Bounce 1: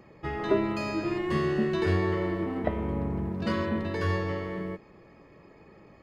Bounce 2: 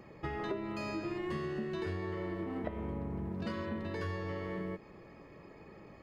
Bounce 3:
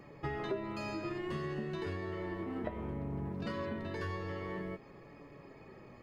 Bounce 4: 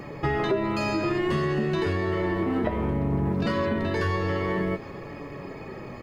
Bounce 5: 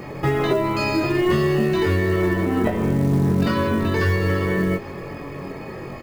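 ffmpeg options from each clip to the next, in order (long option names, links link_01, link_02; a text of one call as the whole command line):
ffmpeg -i in.wav -af "acompressor=threshold=-35dB:ratio=6" out.wav
ffmpeg -i in.wav -af "flanger=delay=6.8:depth=1.6:regen=56:speed=0.58:shape=triangular,volume=4dB" out.wav
ffmpeg -i in.wav -filter_complex "[0:a]asplit=2[link_01][link_02];[link_02]alimiter=level_in=10.5dB:limit=-24dB:level=0:latency=1,volume=-10.5dB,volume=3dB[link_03];[link_01][link_03]amix=inputs=2:normalize=0,aecho=1:1:810:0.075,volume=7.5dB" out.wav
ffmpeg -i in.wav -filter_complex "[0:a]asplit=2[link_01][link_02];[link_02]adelay=22,volume=-3dB[link_03];[link_01][link_03]amix=inputs=2:normalize=0,acrusher=bits=7:mode=log:mix=0:aa=0.000001,volume=3.5dB" out.wav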